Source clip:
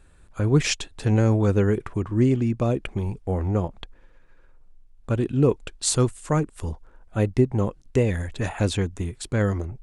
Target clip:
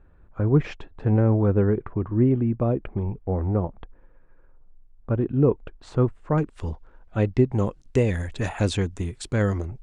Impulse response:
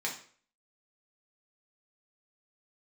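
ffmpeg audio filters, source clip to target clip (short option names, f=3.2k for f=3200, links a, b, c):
-af "asetnsamples=n=441:p=0,asendcmd='6.38 lowpass f 4400;7.52 lowpass f 8900',lowpass=1.3k"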